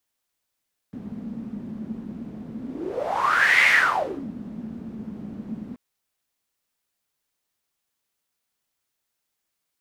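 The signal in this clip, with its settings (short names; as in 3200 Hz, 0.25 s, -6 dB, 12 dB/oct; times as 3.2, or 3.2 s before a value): whoosh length 4.83 s, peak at 2.74, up 1.17 s, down 0.67 s, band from 220 Hz, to 2100 Hz, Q 8.3, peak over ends 18 dB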